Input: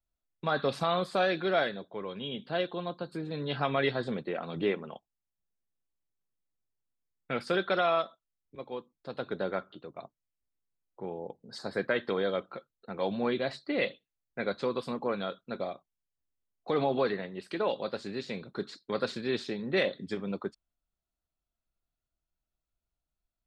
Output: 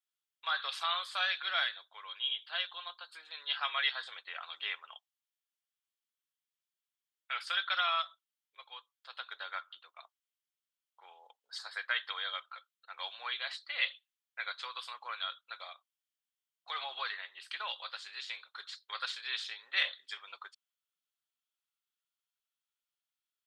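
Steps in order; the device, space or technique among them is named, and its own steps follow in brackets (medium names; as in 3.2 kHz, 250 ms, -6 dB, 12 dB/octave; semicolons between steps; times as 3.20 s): headphones lying on a table (high-pass 1.1 kHz 24 dB/octave; peaking EQ 3.2 kHz +8 dB 0.36 oct)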